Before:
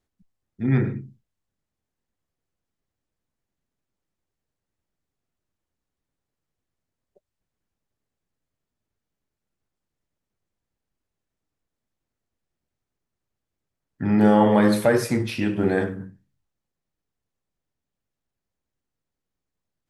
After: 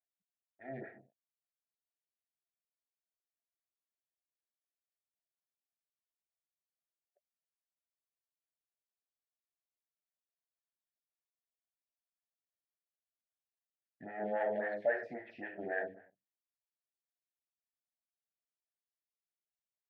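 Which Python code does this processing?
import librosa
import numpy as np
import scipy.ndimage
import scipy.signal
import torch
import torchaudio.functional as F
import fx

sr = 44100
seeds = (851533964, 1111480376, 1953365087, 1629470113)

y = fx.leveller(x, sr, passes=2)
y = fx.double_bandpass(y, sr, hz=1100.0, octaves=1.4)
y = fx.air_absorb(y, sr, metres=220.0)
y = fx.stagger_phaser(y, sr, hz=3.7)
y = y * 10.0 ** (-6.5 / 20.0)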